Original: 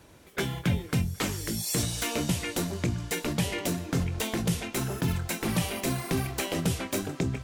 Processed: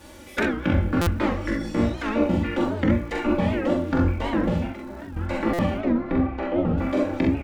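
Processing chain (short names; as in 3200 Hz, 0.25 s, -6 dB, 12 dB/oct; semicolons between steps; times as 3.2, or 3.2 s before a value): spectral trails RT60 1.17 s; recorder AGC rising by 5.2 dB/s; reverb removal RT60 0.75 s; de-hum 54.19 Hz, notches 4; treble ducked by the level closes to 1300 Hz, closed at -26.5 dBFS; comb 3.5 ms, depth 88%; 4.67–5.17 level quantiser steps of 21 dB; crackle 230/s -49 dBFS; 5.77–6.78 tape spacing loss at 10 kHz 28 dB; on a send: early reflections 43 ms -3.5 dB, 65 ms -6 dB; on the sum: stuck buffer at 1.01/5.53, samples 256, times 9; record warp 78 rpm, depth 160 cents; gain +3.5 dB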